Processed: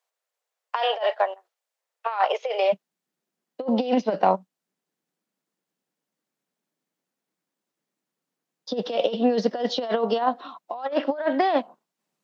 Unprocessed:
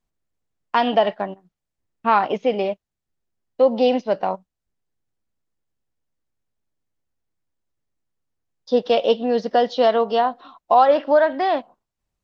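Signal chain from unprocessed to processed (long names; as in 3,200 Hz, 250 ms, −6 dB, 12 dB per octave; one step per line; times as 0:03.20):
compressor whose output falls as the input rises −21 dBFS, ratio −0.5
Butterworth high-pass 470 Hz 48 dB per octave, from 0:02.72 160 Hz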